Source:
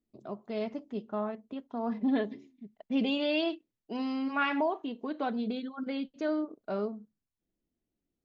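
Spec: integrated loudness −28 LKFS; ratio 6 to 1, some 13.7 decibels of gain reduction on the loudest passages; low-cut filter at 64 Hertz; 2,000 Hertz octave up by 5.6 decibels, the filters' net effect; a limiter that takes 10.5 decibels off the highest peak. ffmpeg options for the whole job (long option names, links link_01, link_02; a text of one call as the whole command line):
ffmpeg -i in.wav -af "highpass=64,equalizer=frequency=2000:width_type=o:gain=8,acompressor=threshold=-37dB:ratio=6,volume=18dB,alimiter=limit=-19dB:level=0:latency=1" out.wav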